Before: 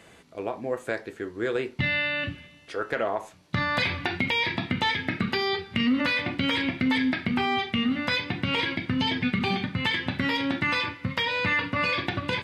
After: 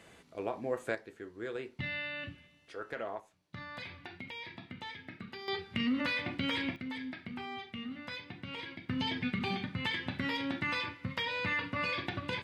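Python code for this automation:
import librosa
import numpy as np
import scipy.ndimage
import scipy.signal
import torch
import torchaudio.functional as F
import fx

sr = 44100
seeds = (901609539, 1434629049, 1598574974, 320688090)

y = fx.gain(x, sr, db=fx.steps((0.0, -5.0), (0.95, -12.0), (3.2, -19.0), (5.48, -8.0), (6.76, -16.5), (8.89, -8.5)))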